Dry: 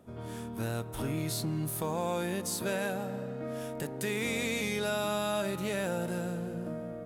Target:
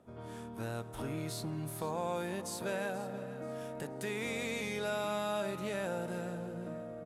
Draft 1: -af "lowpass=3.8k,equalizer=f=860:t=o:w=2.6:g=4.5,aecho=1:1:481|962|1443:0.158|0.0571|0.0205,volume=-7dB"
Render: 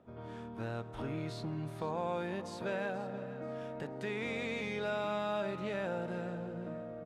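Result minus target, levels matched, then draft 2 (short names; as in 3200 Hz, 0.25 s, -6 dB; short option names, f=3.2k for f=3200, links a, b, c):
8000 Hz band -13.0 dB
-af "lowpass=12k,equalizer=f=860:t=o:w=2.6:g=4.5,aecho=1:1:481|962|1443:0.158|0.0571|0.0205,volume=-7dB"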